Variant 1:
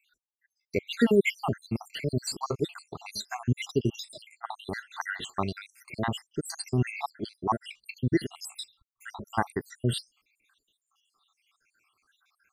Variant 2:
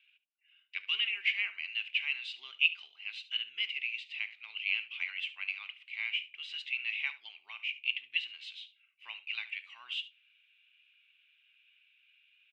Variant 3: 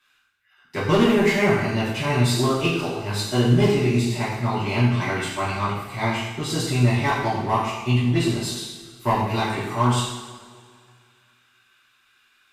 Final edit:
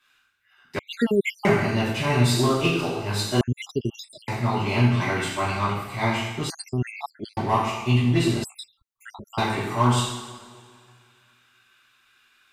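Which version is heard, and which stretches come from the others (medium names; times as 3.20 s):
3
0.79–1.45 s: from 1
3.41–4.28 s: from 1
6.50–7.37 s: from 1
8.44–9.38 s: from 1
not used: 2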